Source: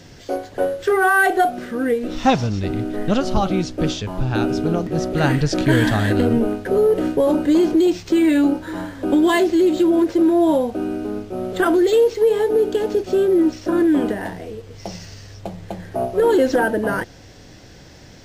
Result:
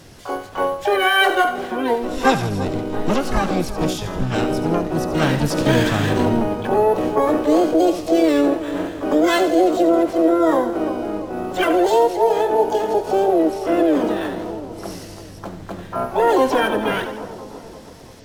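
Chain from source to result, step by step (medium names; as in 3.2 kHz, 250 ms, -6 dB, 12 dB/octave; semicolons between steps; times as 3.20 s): two-band feedback delay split 710 Hz, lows 338 ms, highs 81 ms, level -10.5 dB; harmony voices +7 st -7 dB, +12 st -5 dB; trim -2.5 dB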